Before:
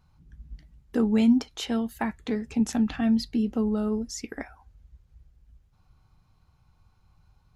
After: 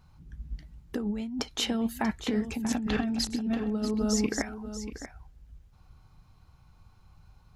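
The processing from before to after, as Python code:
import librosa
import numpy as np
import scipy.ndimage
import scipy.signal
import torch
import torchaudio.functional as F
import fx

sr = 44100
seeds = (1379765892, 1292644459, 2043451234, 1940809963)

y = fx.reverse_delay(x, sr, ms=324, wet_db=-5.5, at=(2.32, 4.42))
y = fx.over_compress(y, sr, threshold_db=-29.0, ratio=-1.0)
y = y + 10.0 ** (-11.5 / 20.0) * np.pad(y, (int(637 * sr / 1000.0), 0))[:len(y)]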